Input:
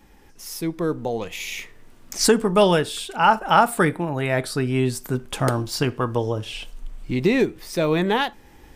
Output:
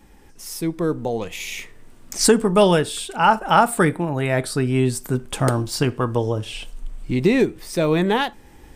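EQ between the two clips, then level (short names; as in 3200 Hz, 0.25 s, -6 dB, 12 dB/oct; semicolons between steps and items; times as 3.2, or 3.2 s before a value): low shelf 500 Hz +3 dB; bell 8500 Hz +5.5 dB 0.39 oct; 0.0 dB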